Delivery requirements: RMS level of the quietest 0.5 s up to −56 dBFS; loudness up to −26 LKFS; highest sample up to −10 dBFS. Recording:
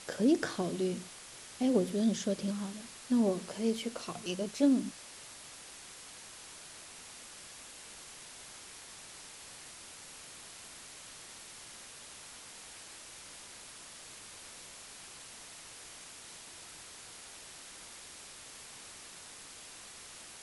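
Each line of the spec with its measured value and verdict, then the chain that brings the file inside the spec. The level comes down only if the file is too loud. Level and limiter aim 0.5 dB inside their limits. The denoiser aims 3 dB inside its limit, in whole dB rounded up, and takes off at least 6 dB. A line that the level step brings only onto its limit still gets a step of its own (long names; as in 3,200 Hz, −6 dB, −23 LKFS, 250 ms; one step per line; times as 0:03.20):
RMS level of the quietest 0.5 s −50 dBFS: out of spec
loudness −38.5 LKFS: in spec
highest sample −16.0 dBFS: in spec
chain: broadband denoise 9 dB, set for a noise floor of −50 dBFS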